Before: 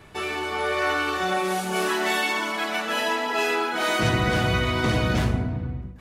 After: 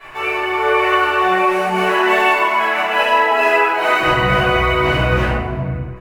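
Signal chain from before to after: dead-time distortion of 0.056 ms; chorus voices 6, 0.37 Hz, delay 18 ms, depth 4.4 ms; high-order bell 1.2 kHz +13 dB 3 oct; band-stop 3.4 kHz, Q 11; small resonant body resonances 350/1100 Hz, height 8 dB, ringing for 85 ms; on a send: delay 287 ms -24 dB; on the sum: simulated room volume 110 m³, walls mixed, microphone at 3.3 m; tape noise reduction on one side only encoder only; trim -11.5 dB

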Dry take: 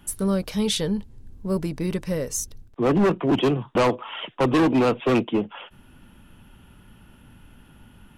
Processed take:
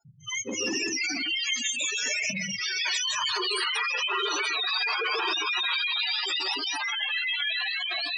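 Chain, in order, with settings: spectrum inverted on a logarithmic axis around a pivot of 1.1 kHz; repeats whose band climbs or falls 332 ms, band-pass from 1.2 kHz, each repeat 0.7 oct, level -2 dB; gate -44 dBFS, range -29 dB; compression 6:1, threshold -34 dBFS, peak gain reduction 20.5 dB; ever faster or slower copies 298 ms, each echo -3 st, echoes 3, each echo -6 dB; overdrive pedal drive 26 dB, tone 6 kHz, clips at -21.5 dBFS; gated-style reverb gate 200 ms rising, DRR 1 dB; spectral gate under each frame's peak -10 dB strong; spectral noise reduction 22 dB; transformer saturation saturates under 770 Hz; trim +1.5 dB

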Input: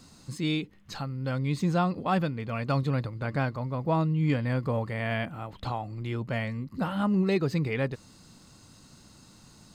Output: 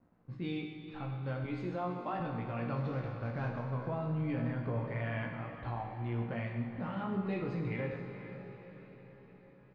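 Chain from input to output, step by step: 2.76–3.64 s: CVSD coder 32 kbps; level-controlled noise filter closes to 910 Hz, open at -26.5 dBFS; 1.44–2.20 s: high-pass 250 Hz 24 dB/octave; crossover distortion -56.5 dBFS; low-pass 2.4 kHz 12 dB/octave; echo that smears into a reverb 465 ms, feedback 55%, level -13 dB; wow and flutter 24 cents; doubling 17 ms -4 dB; peak limiter -21 dBFS, peak gain reduction 7.5 dB; Schroeder reverb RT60 1.4 s, combs from 30 ms, DRR 3 dB; trim -8 dB

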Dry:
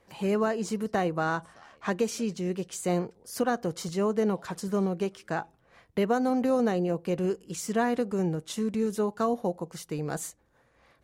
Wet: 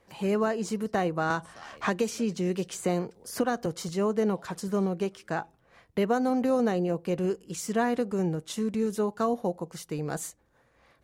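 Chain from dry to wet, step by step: 1.30–3.66 s: three bands compressed up and down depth 70%

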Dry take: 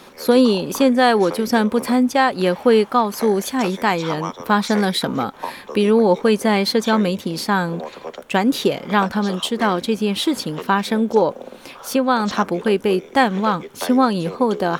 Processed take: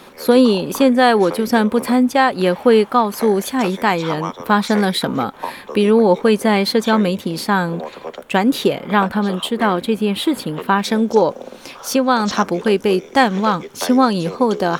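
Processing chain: peaking EQ 5.8 kHz -4 dB 0.67 oct, from 8.72 s -12 dB, from 10.84 s +5.5 dB; trim +2 dB

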